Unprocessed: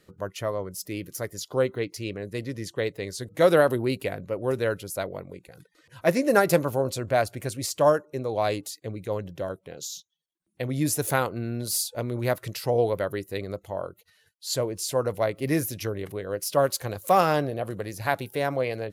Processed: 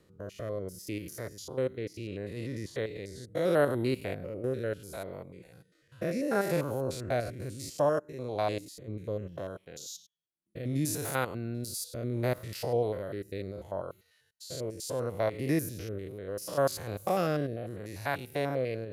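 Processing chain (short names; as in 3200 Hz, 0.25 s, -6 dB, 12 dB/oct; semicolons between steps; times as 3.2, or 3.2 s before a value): stepped spectrum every 0.1 s; rotary speaker horn 0.7 Hz; gain -2 dB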